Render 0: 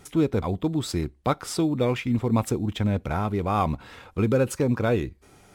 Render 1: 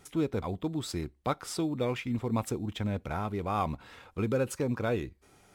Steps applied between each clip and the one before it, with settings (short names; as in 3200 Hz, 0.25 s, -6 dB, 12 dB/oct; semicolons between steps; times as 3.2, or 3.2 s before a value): low shelf 400 Hz -3 dB; gain -5.5 dB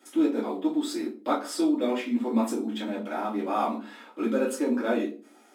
rippled Chebyshev high-pass 210 Hz, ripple 3 dB; reverb RT60 0.40 s, pre-delay 3 ms, DRR -8 dB; gain -4.5 dB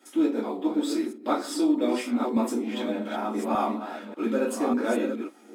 reverse delay 0.592 s, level -6 dB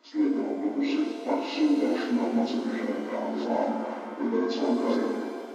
inharmonic rescaling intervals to 80%; shimmer reverb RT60 2.2 s, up +7 st, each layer -8 dB, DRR 5 dB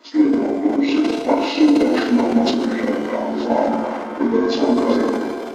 transient shaper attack +6 dB, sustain +10 dB; gain +7 dB